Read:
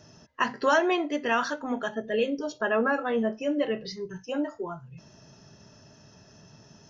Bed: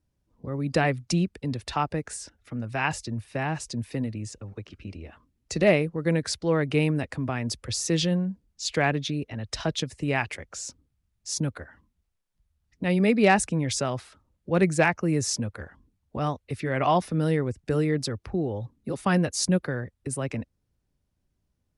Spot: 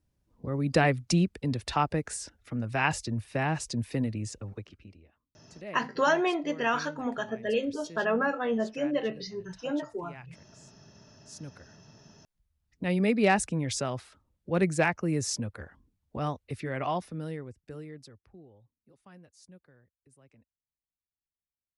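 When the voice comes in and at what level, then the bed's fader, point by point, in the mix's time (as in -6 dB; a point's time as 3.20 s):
5.35 s, -2.0 dB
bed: 4.52 s 0 dB
5.18 s -22 dB
10.95 s -22 dB
12.22 s -4 dB
16.50 s -4 dB
18.93 s -30.5 dB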